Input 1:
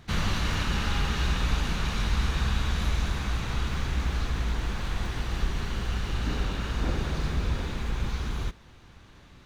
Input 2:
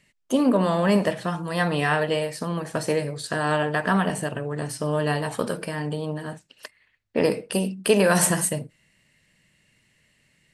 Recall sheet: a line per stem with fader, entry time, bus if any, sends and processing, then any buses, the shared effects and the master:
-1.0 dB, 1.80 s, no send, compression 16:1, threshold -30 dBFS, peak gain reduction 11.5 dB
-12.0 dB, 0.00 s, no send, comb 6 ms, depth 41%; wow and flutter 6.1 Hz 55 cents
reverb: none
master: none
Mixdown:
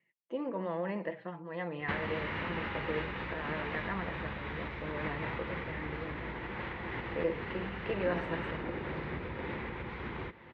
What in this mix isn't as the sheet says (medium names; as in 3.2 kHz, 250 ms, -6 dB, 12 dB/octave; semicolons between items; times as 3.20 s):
stem 2 -12.0 dB -> -19.5 dB; master: extra cabinet simulation 110–2900 Hz, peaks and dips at 350 Hz +7 dB, 510 Hz +7 dB, 920 Hz +6 dB, 2 kHz +10 dB